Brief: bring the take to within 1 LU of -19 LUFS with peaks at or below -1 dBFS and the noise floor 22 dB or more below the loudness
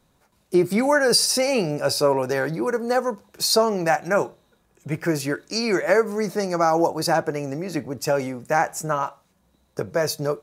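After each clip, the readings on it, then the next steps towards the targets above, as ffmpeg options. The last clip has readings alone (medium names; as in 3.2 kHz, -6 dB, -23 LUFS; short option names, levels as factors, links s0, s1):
loudness -22.5 LUFS; peak level -5.5 dBFS; loudness target -19.0 LUFS
-> -af "volume=1.5"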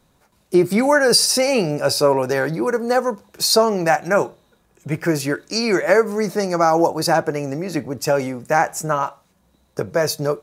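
loudness -19.0 LUFS; peak level -2.0 dBFS; noise floor -61 dBFS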